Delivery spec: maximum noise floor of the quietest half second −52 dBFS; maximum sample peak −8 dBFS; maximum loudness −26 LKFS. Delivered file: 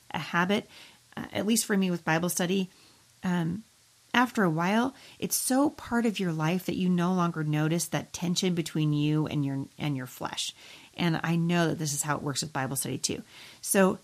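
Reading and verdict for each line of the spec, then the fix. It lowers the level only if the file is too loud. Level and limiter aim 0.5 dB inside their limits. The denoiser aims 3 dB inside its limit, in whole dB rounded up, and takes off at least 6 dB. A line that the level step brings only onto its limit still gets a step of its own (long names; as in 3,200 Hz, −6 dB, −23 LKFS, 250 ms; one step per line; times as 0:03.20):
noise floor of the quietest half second −61 dBFS: in spec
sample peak −8.5 dBFS: in spec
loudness −28.5 LKFS: in spec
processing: no processing needed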